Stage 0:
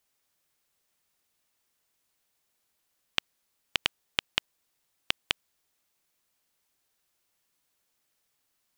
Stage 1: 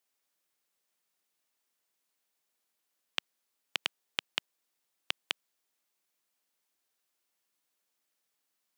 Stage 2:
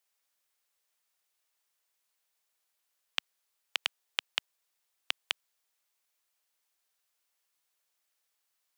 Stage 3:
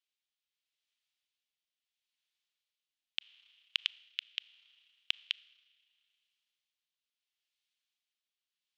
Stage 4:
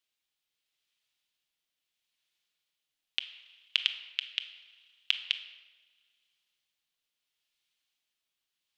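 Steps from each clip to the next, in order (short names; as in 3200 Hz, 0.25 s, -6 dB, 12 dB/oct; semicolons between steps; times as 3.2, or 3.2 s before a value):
HPF 200 Hz 12 dB/oct; gain -5 dB
bell 230 Hz -14.5 dB 1.3 oct; gain +1.5 dB
Schroeder reverb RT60 1.9 s, combs from 27 ms, DRR 20 dB; rotary speaker horn 0.75 Hz; band-pass 3200 Hz, Q 2.2; gain +2 dB
shoebox room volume 830 m³, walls mixed, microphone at 0.6 m; gain +5 dB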